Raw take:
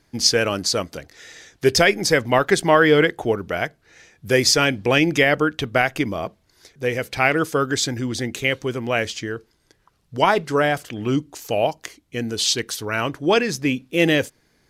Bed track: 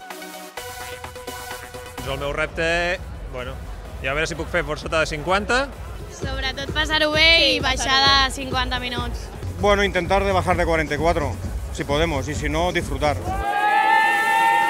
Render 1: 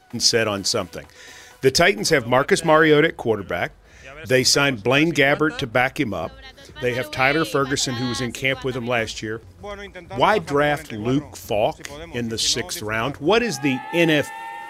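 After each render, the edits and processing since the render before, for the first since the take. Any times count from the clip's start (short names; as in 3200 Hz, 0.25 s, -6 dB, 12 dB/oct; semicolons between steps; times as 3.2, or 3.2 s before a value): add bed track -16.5 dB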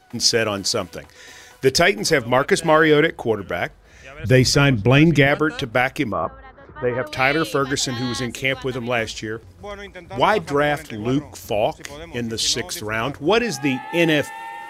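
4.19–5.27 tone controls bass +12 dB, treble -4 dB; 6.12–7.07 synth low-pass 1200 Hz, resonance Q 3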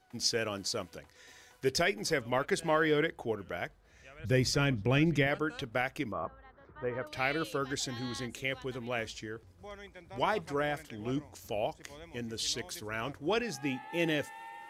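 gain -13.5 dB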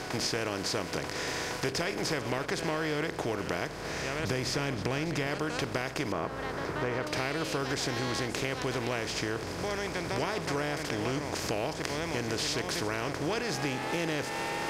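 per-bin compression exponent 0.4; compressor, threshold -28 dBFS, peak gain reduction 9.5 dB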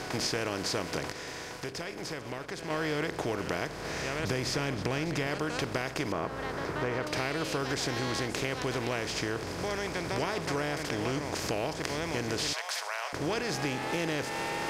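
1.12–2.7 gain -6.5 dB; 12.53–13.13 steep high-pass 620 Hz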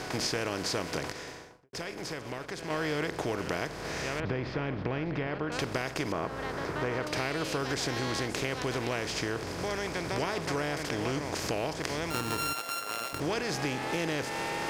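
1.14–1.73 studio fade out; 4.2–5.52 air absorption 350 m; 12.1–13.2 sample sorter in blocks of 32 samples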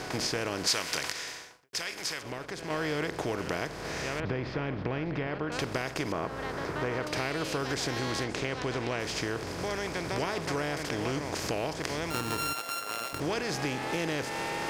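0.67–2.23 tilt shelf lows -8.5 dB; 8.24–9 air absorption 52 m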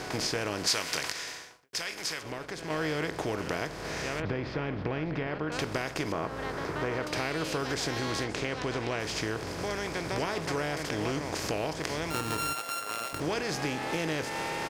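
doubler 19 ms -14 dB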